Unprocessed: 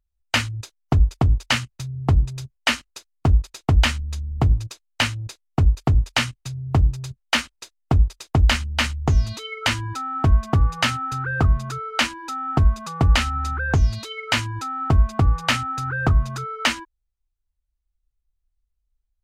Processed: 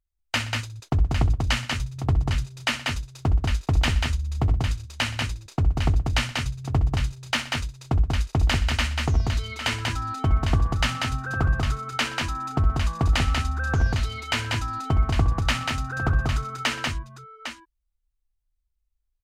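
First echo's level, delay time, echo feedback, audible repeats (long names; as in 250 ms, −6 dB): −13.0 dB, 65 ms, repeats not evenly spaced, 4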